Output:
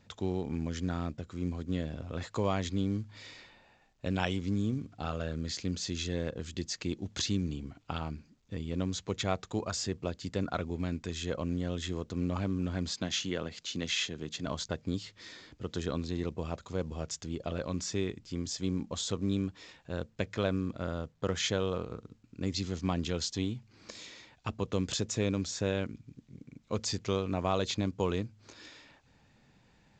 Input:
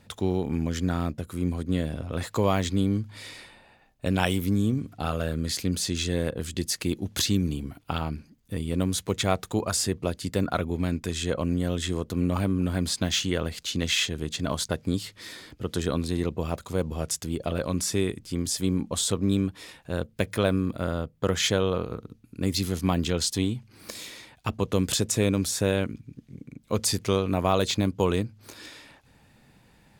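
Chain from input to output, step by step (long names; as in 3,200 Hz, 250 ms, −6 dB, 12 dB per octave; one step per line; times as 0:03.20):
0:12.92–0:14.47: high-pass filter 120 Hz 12 dB per octave
level −7 dB
mu-law 128 kbit/s 16,000 Hz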